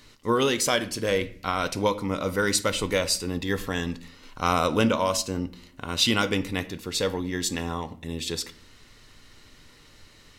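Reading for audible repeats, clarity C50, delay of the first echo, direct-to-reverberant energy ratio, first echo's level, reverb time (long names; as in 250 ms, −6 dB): no echo audible, 16.5 dB, no echo audible, 11.0 dB, no echo audible, 0.55 s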